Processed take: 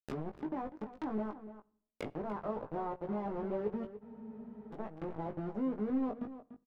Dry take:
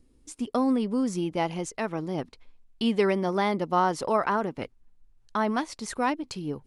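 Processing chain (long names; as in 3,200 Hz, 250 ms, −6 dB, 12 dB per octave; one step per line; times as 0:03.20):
played backwards from end to start
high-shelf EQ 3,500 Hz −7.5 dB
downward compressor 2 to 1, threshold −39 dBFS, peak gain reduction 11.5 dB
bit reduction 6 bits
treble cut that deepens with the level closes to 780 Hz, closed at −35.5 dBFS
double-tracking delay 19 ms −5.5 dB
slap from a distant wall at 50 metres, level −13 dB
convolution reverb RT60 0.60 s, pre-delay 7 ms, DRR 19.5 dB
frozen spectrum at 0:04.03, 0.69 s
level −2.5 dB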